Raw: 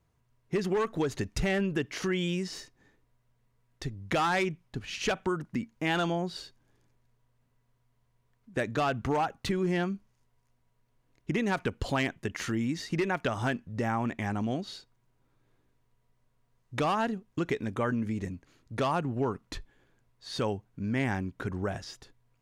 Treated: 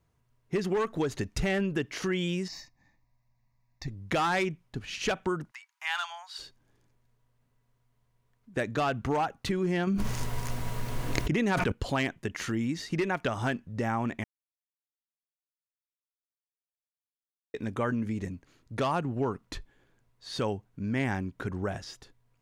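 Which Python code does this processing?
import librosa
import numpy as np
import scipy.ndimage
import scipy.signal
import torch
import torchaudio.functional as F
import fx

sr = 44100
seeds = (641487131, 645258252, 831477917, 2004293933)

y = fx.fixed_phaser(x, sr, hz=2100.0, stages=8, at=(2.48, 3.88))
y = fx.steep_highpass(y, sr, hz=860.0, slope=48, at=(5.5, 6.38), fade=0.02)
y = fx.env_flatten(y, sr, amount_pct=100, at=(9.87, 11.72))
y = fx.edit(y, sr, fx.silence(start_s=14.24, length_s=3.3), tone=tone)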